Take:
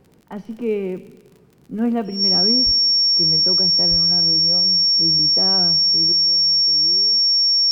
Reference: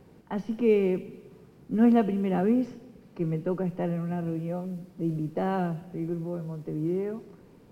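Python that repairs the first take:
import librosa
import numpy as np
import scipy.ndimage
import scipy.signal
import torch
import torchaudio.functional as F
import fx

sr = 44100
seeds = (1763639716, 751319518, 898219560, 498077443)

y = fx.fix_declick_ar(x, sr, threshold=6.5)
y = fx.notch(y, sr, hz=5500.0, q=30.0)
y = fx.highpass(y, sr, hz=140.0, slope=24, at=(2.65, 2.77), fade=0.02)
y = fx.highpass(y, sr, hz=140.0, slope=24, at=(3.9, 4.02), fade=0.02)
y = fx.fix_level(y, sr, at_s=6.12, step_db=10.5)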